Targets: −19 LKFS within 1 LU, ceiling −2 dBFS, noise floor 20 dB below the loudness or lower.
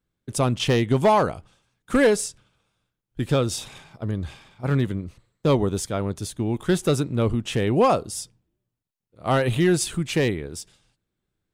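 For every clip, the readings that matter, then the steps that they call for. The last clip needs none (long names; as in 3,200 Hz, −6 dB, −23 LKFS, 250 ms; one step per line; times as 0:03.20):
share of clipped samples 0.4%; peaks flattened at −11.5 dBFS; integrated loudness −23.5 LKFS; sample peak −11.5 dBFS; target loudness −19.0 LKFS
→ clipped peaks rebuilt −11.5 dBFS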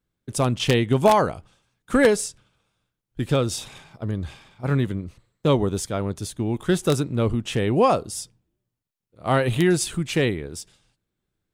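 share of clipped samples 0.0%; integrated loudness −23.0 LKFS; sample peak −2.5 dBFS; target loudness −19.0 LKFS
→ level +4 dB
brickwall limiter −2 dBFS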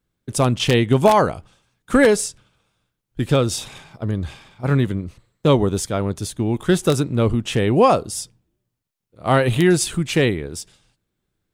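integrated loudness −19.5 LKFS; sample peak −2.0 dBFS; background noise floor −78 dBFS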